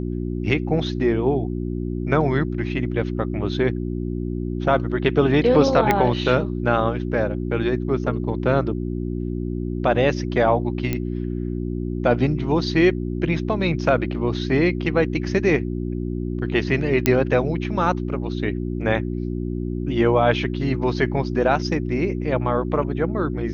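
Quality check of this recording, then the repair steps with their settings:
hum 60 Hz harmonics 6 -26 dBFS
5.91 pop -5 dBFS
10.93 pop -10 dBFS
17.06 pop -2 dBFS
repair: de-click; de-hum 60 Hz, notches 6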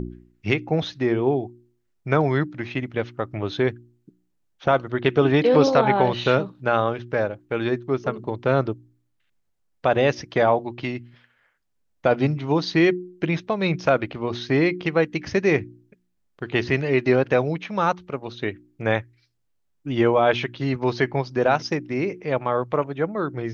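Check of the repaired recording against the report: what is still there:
none

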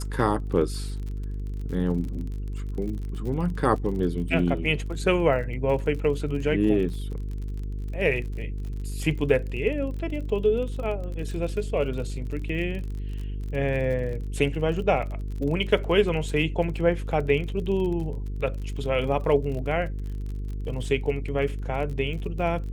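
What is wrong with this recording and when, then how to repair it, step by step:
buzz 50 Hz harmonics 9 -31 dBFS
crackle 43/s -34 dBFS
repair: de-click; de-hum 50 Hz, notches 9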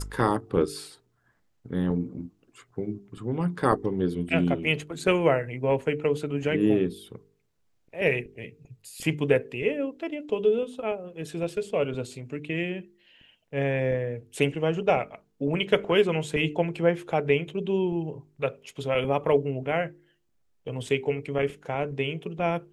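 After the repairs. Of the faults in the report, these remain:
none

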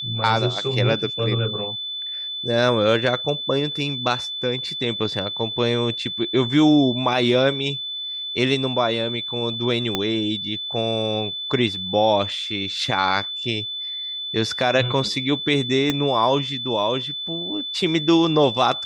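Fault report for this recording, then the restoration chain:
tone 3500 Hz -27 dBFS
9.95 pop -7 dBFS
15.9 pop -7 dBFS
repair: de-click; notch 3500 Hz, Q 30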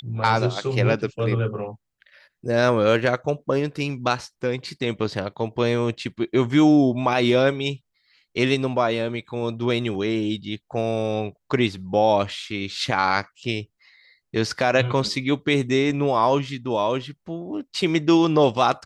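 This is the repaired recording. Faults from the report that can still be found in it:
9.95 pop
15.9 pop

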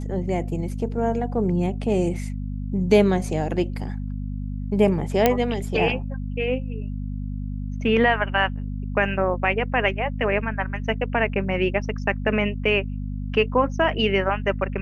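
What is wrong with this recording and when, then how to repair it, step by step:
hum 50 Hz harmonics 5 -29 dBFS
5.26 pop -3 dBFS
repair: de-click; de-hum 50 Hz, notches 5

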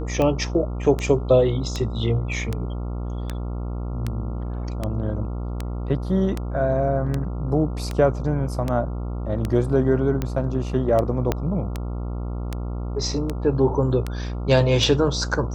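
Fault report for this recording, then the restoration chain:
buzz 60 Hz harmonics 23 -28 dBFS
tick 78 rpm -12 dBFS
11.32 pop -8 dBFS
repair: de-click; de-hum 60 Hz, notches 23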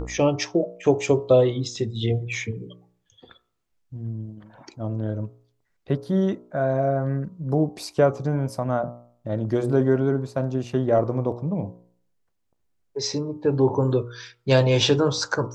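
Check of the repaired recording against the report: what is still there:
11.32 pop

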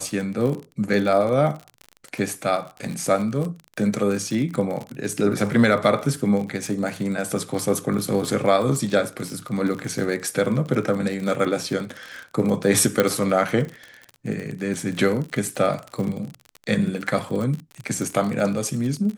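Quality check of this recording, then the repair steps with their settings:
crackle 42/s -27 dBFS
13 pop -5 dBFS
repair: de-click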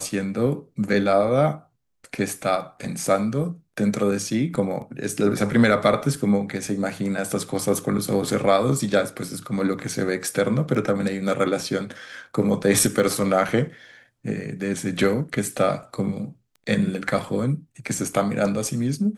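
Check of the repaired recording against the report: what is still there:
13 pop

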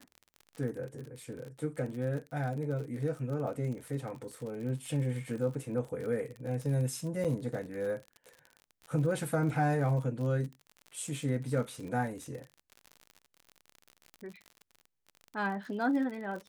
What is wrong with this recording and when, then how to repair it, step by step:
crackle 52/s -39 dBFS
7.24–7.25 gap 6.9 ms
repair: de-click; interpolate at 7.24, 6.9 ms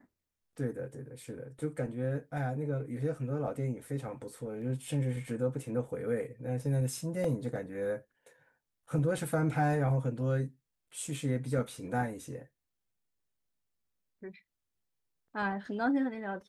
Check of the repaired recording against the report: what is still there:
none

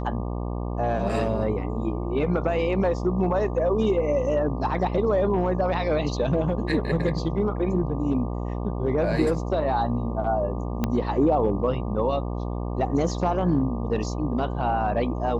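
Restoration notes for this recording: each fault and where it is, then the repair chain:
buzz 60 Hz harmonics 20 -29 dBFS
10.84 pop -11 dBFS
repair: de-click; de-hum 60 Hz, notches 20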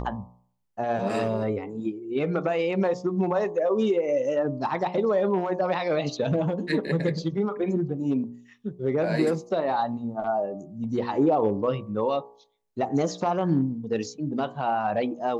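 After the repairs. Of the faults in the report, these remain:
10.84 pop

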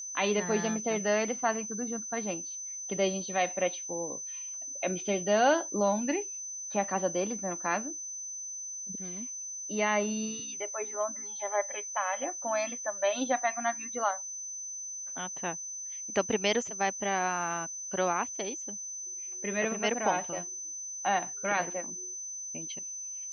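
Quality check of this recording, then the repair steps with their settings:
tone 6100 Hz -37 dBFS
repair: notch 6100 Hz, Q 30

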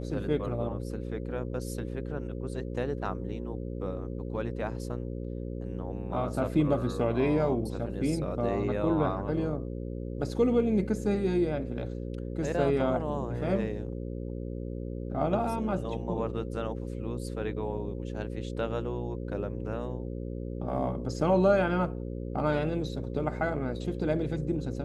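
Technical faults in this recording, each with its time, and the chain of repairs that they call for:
buzz 60 Hz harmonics 9 -36 dBFS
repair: de-hum 60 Hz, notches 9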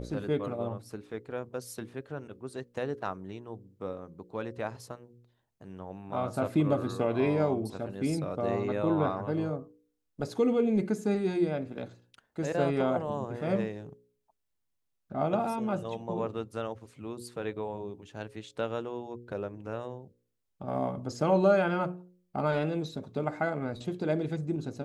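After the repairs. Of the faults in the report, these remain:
none

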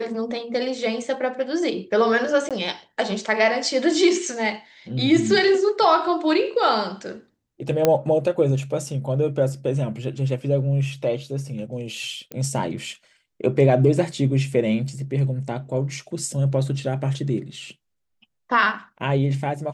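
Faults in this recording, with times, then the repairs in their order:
2.49–2.51 gap 17 ms
7.85 pop -4 dBFS
12.32 pop -17 dBFS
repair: de-click; interpolate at 2.49, 17 ms

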